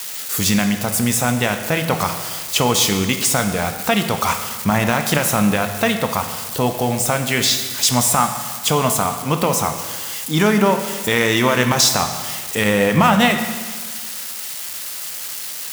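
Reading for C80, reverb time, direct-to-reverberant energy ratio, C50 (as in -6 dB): 9.0 dB, 1.6 s, 6.0 dB, 8.0 dB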